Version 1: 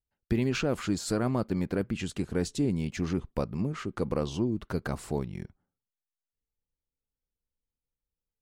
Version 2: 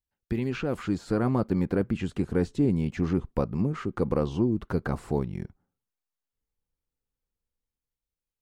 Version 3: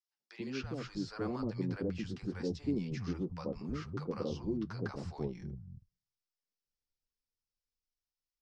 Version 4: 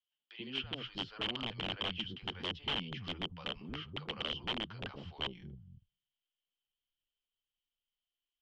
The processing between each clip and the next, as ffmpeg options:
ffmpeg -i in.wav -filter_complex "[0:a]acrossover=split=3200[link_01][link_02];[link_02]acompressor=threshold=-49dB:ratio=4:attack=1:release=60[link_03];[link_01][link_03]amix=inputs=2:normalize=0,bandreject=frequency=620:width=12,acrossover=split=1600[link_04][link_05];[link_04]dynaudnorm=framelen=110:gausssize=17:maxgain=6dB[link_06];[link_06][link_05]amix=inputs=2:normalize=0,volume=-2dB" out.wav
ffmpeg -i in.wav -filter_complex "[0:a]flanger=delay=5.6:depth=5.2:regen=-40:speed=1.6:shape=sinusoidal,lowpass=frequency=5300:width_type=q:width=4.6,acrossover=split=150|740[link_01][link_02][link_03];[link_02]adelay=80[link_04];[link_01]adelay=320[link_05];[link_05][link_04][link_03]amix=inputs=3:normalize=0,volume=-5.5dB" out.wav
ffmpeg -i in.wav -af "aeval=exprs='(mod(28.2*val(0)+1,2)-1)/28.2':channel_layout=same,lowpass=frequency=3100:width_type=q:width=15,volume=-6dB" out.wav

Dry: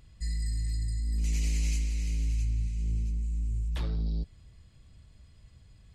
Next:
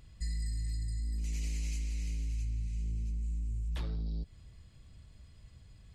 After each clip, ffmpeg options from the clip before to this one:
ffmpeg -i in.wav -af "acompressor=threshold=-32dB:ratio=6" out.wav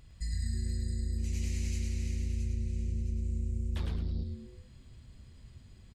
ffmpeg -i in.wav -filter_complex "[0:a]asplit=5[link_01][link_02][link_03][link_04][link_05];[link_02]adelay=107,afreqshift=-140,volume=-3.5dB[link_06];[link_03]adelay=214,afreqshift=-280,volume=-13.1dB[link_07];[link_04]adelay=321,afreqshift=-420,volume=-22.8dB[link_08];[link_05]adelay=428,afreqshift=-560,volume=-32.4dB[link_09];[link_01][link_06][link_07][link_08][link_09]amix=inputs=5:normalize=0" out.wav

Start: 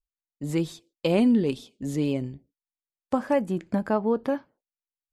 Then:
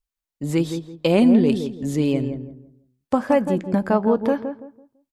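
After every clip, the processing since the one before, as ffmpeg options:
ffmpeg -i in.wav -filter_complex "[0:a]asplit=2[link_01][link_02];[link_02]adelay=167,lowpass=frequency=1000:poles=1,volume=-7dB,asplit=2[link_03][link_04];[link_04]adelay=167,lowpass=frequency=1000:poles=1,volume=0.3,asplit=2[link_05][link_06];[link_06]adelay=167,lowpass=frequency=1000:poles=1,volume=0.3,asplit=2[link_07][link_08];[link_08]adelay=167,lowpass=frequency=1000:poles=1,volume=0.3[link_09];[link_01][link_03][link_05][link_07][link_09]amix=inputs=5:normalize=0,volume=5dB" out.wav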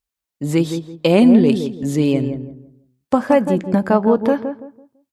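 ffmpeg -i in.wav -af "highpass=56,volume=4dB" out.wav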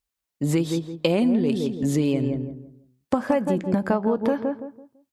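ffmpeg -i in.wav -af "acompressor=threshold=-18dB:ratio=6" out.wav

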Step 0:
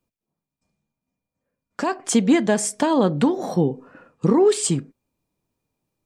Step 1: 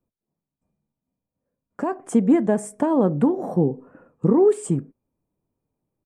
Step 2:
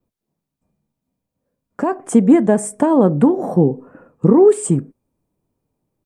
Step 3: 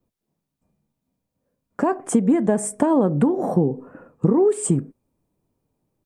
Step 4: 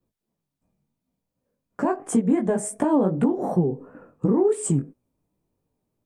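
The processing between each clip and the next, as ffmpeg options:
ffmpeg -i in.wav -af "firequalizer=gain_entry='entry(420,0);entry(4100,-26);entry(8500,-10)':delay=0.05:min_phase=1" out.wav
ffmpeg -i in.wav -af "adynamicequalizer=threshold=0.00316:dfrequency=8700:dqfactor=2.1:tfrequency=8700:tqfactor=2.1:attack=5:release=100:ratio=0.375:range=2.5:mode=boostabove:tftype=bell,volume=6dB" out.wav
ffmpeg -i in.wav -af "acompressor=threshold=-14dB:ratio=6" out.wav
ffmpeg -i in.wav -af "flanger=delay=16:depth=6.3:speed=2.8" out.wav

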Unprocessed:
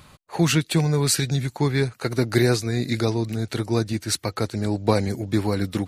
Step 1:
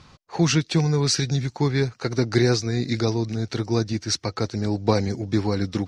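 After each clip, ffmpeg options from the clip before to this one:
ffmpeg -i in.wav -af "lowpass=frequency=5600:width_type=q:width=4.1,highshelf=frequency=2700:gain=-8.5,bandreject=frequency=600:width=12" out.wav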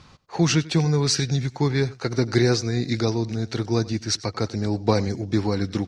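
ffmpeg -i in.wav -af "aecho=1:1:94:0.1" out.wav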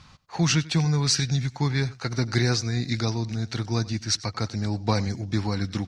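ffmpeg -i in.wav -af "equalizer=frequency=410:width_type=o:width=1.2:gain=-9.5" out.wav

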